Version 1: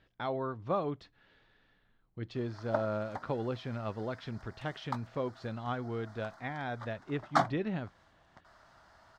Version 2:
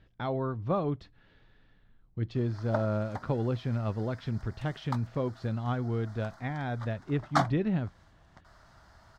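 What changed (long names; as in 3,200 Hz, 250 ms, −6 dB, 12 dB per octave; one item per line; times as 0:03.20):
background: add spectral tilt +1.5 dB per octave
master: add low-shelf EQ 230 Hz +12 dB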